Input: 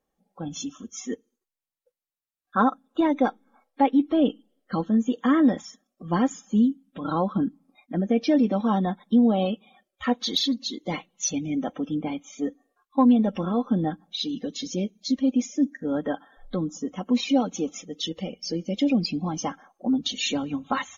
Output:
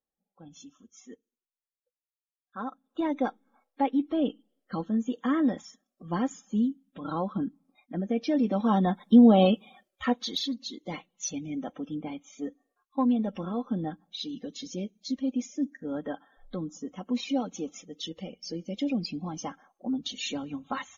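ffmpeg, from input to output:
-af "volume=1.68,afade=t=in:st=2.62:d=0.5:silence=0.316228,afade=t=in:st=8.33:d=1.15:silence=0.298538,afade=t=out:st=9.48:d=0.83:silence=0.266073"

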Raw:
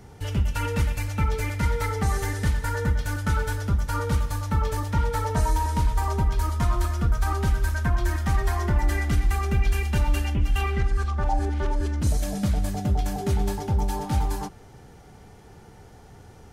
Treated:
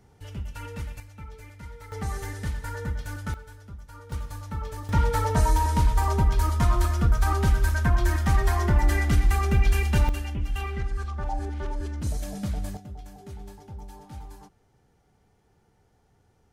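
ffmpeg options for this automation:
-af "asetnsamples=n=441:p=0,asendcmd='1 volume volume -18dB;1.92 volume volume -7dB;3.34 volume volume -18.5dB;4.12 volume volume -9dB;4.89 volume volume 1.5dB;10.09 volume volume -6dB;12.77 volume volume -17dB',volume=0.282"

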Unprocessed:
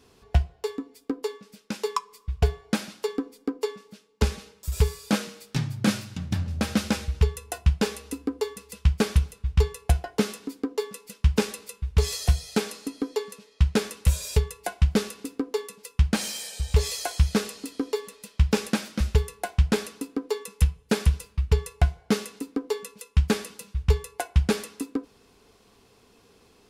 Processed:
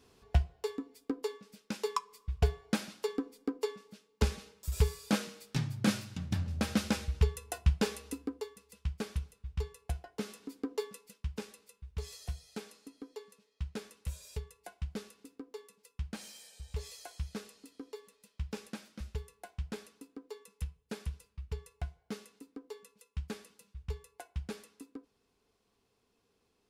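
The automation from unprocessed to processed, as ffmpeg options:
-af "volume=1.26,afade=t=out:st=8.09:d=0.41:silence=0.354813,afade=t=in:st=10.18:d=0.58:silence=0.398107,afade=t=out:st=10.76:d=0.52:silence=0.281838"

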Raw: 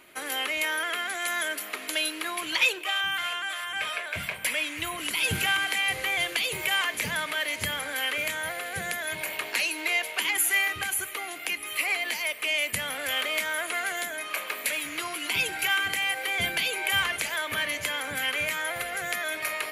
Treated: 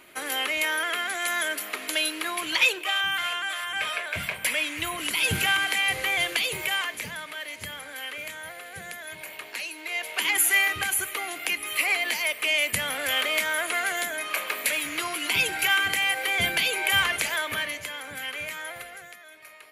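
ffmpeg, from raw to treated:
-af "volume=3.98,afade=t=out:st=6.36:d=0.8:silence=0.354813,afade=t=in:st=9.88:d=0.45:silence=0.316228,afade=t=out:st=17.31:d=0.55:silence=0.375837,afade=t=out:st=18.68:d=0.49:silence=0.251189"

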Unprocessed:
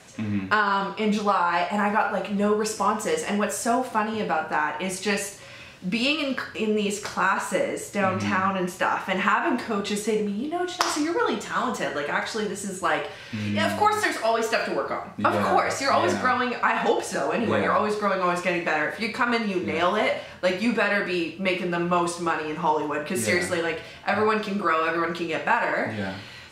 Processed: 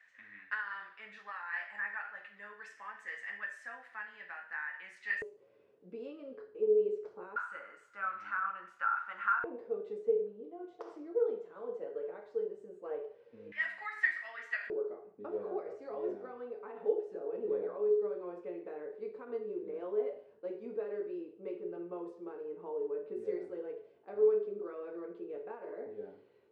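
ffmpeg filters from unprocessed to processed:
-af "asetnsamples=n=441:p=0,asendcmd='5.22 bandpass f 430;7.36 bandpass f 1400;9.44 bandpass f 460;13.52 bandpass f 1900;14.7 bandpass f 420',bandpass=f=1800:t=q:w=14:csg=0"

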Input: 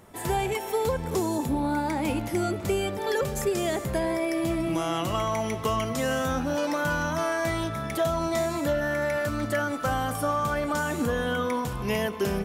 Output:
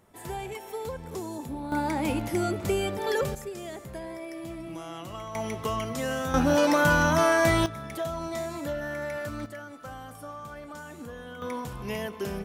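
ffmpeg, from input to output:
-af "asetnsamples=n=441:p=0,asendcmd='1.72 volume volume -0.5dB;3.35 volume volume -11.5dB;5.35 volume volume -3.5dB;6.34 volume volume 5.5dB;7.66 volume volume -6.5dB;9.46 volume volume -14.5dB;11.42 volume volume -6dB',volume=0.355"

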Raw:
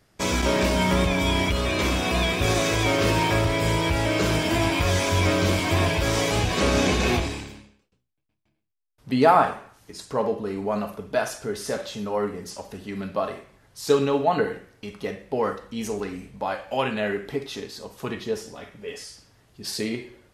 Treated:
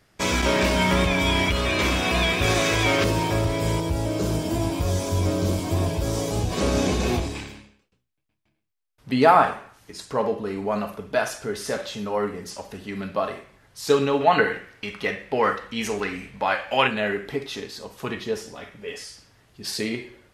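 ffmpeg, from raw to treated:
-af "asetnsamples=n=441:p=0,asendcmd='3.04 equalizer g -6.5;3.8 equalizer g -14.5;6.52 equalizer g -7;7.35 equalizer g 3.5;14.21 equalizer g 12;16.87 equalizer g 3.5',equalizer=f=2100:t=o:w=2:g=3.5"

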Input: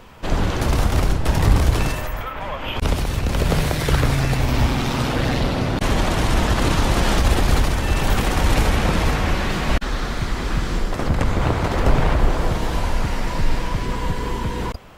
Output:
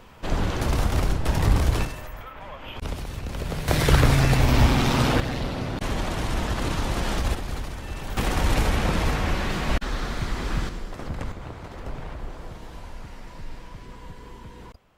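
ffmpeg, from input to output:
-af "asetnsamples=n=441:p=0,asendcmd='1.85 volume volume -11dB;3.68 volume volume 0.5dB;5.2 volume volume -8dB;7.35 volume volume -14dB;8.17 volume volume -4.5dB;10.69 volume volume -12dB;11.32 volume volume -18dB',volume=0.596"

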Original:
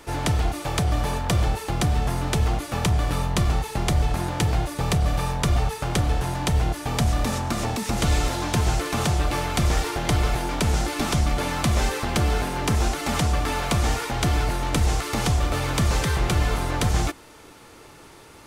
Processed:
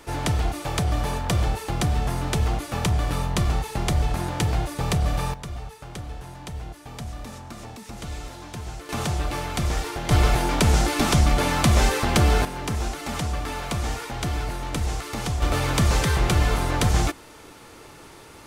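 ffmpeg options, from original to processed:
-af "asetnsamples=n=441:p=0,asendcmd='5.34 volume volume -13dB;8.89 volume volume -3.5dB;10.11 volume volume 3.5dB;12.45 volume volume -5dB;15.42 volume volume 1.5dB',volume=0.891"

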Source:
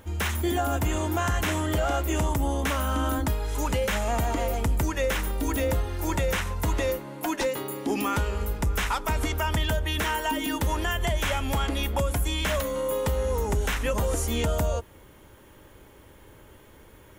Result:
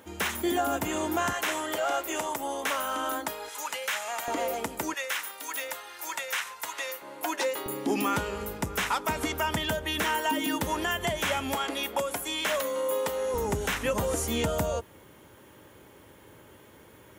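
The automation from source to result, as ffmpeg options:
-af "asetnsamples=n=441:p=0,asendcmd='1.33 highpass f 480;3.49 highpass f 1000;4.28 highpass f 320;4.94 highpass f 1100;7.02 highpass f 460;7.66 highpass f 150;11.54 highpass f 350;13.34 highpass f 110',highpass=210"

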